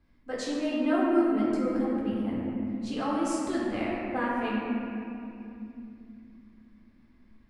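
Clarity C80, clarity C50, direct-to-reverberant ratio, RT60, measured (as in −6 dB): −0.5 dB, −2.0 dB, −6.5 dB, 2.8 s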